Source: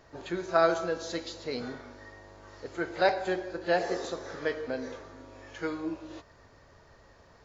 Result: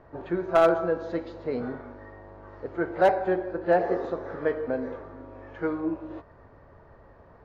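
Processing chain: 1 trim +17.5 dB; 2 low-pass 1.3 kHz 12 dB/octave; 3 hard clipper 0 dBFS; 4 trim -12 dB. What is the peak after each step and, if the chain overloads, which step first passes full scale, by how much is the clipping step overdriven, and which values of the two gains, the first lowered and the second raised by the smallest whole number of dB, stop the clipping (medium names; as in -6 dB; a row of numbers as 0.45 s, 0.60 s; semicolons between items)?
+7.5 dBFS, +5.5 dBFS, 0.0 dBFS, -12.0 dBFS; step 1, 5.5 dB; step 1 +11.5 dB, step 4 -6 dB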